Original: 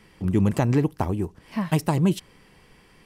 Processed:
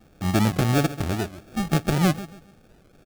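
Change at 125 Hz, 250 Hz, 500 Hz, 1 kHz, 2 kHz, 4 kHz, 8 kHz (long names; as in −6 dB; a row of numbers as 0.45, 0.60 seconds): 0.0, −0.5, −0.5, +2.0, +6.0, +7.5, +6.5 decibels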